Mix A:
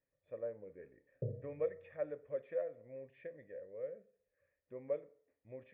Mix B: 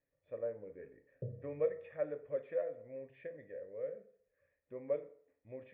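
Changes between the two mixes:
speech: send +7.5 dB; background: send off

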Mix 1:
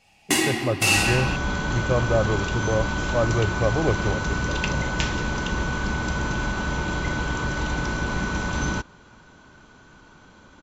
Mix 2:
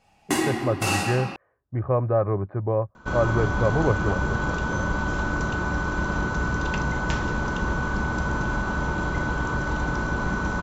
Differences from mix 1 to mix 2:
second sound: entry +2.10 s; master: add resonant high shelf 1800 Hz -6.5 dB, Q 1.5

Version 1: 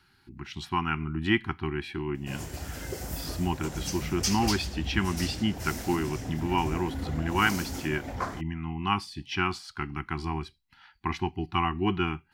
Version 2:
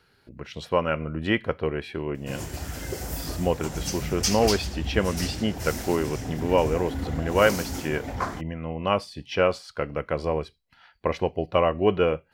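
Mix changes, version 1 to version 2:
speech: remove elliptic band-stop 370–780 Hz; background +3.5 dB

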